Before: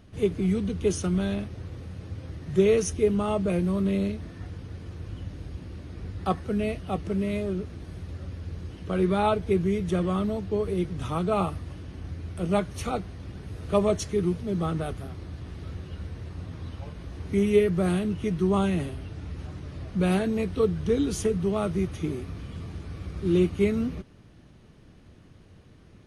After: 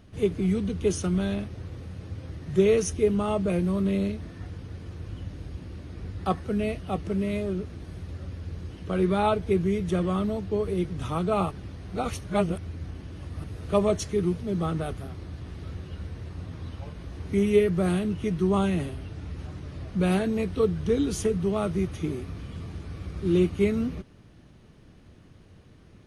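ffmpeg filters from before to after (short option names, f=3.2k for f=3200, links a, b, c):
-filter_complex "[0:a]asplit=3[a][b][c];[a]atrim=end=11.512[d];[b]atrim=start=11.508:end=13.442,asetpts=PTS-STARTPTS,areverse[e];[c]atrim=start=13.438[f];[d][e]acrossfade=d=0.004:c1=hsin:c2=hsin[g];[g][f]acrossfade=d=0.004:c1=hsin:c2=hsin"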